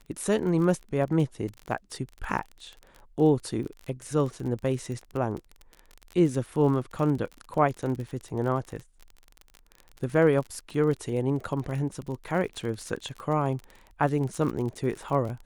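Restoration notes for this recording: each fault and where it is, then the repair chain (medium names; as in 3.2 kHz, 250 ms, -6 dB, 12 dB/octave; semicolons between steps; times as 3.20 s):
crackle 32 per s -33 dBFS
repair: de-click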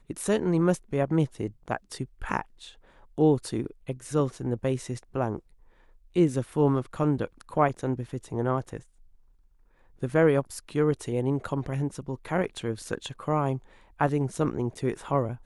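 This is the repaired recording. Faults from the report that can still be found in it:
nothing left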